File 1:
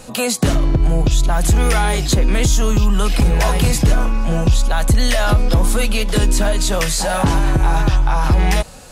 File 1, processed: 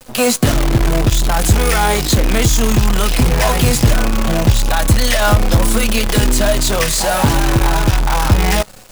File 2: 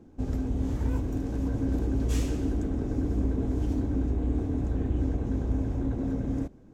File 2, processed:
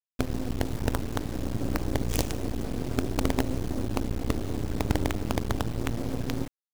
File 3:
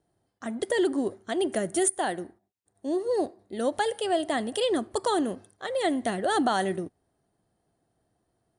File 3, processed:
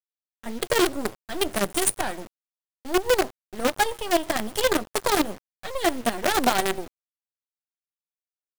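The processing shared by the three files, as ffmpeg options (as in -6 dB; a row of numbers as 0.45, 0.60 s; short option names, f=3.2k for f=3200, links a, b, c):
-af "agate=range=-33dB:threshold=-35dB:ratio=3:detection=peak,flanger=delay=7.7:depth=2.3:regen=43:speed=0.3:shape=triangular,acrusher=bits=5:dc=4:mix=0:aa=0.000001,volume=6.5dB"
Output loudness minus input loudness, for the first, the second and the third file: +2.5, -1.0, +3.0 LU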